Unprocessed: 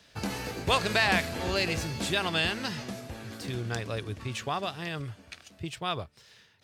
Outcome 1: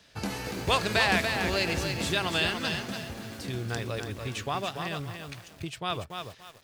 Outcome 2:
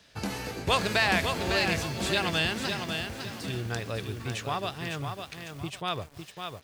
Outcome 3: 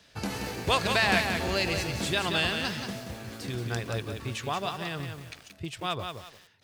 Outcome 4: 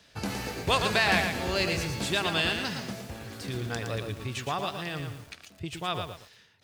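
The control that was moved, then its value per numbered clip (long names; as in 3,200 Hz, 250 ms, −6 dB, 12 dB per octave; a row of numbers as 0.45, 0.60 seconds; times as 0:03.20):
feedback echo at a low word length, delay time: 287, 554, 179, 115 milliseconds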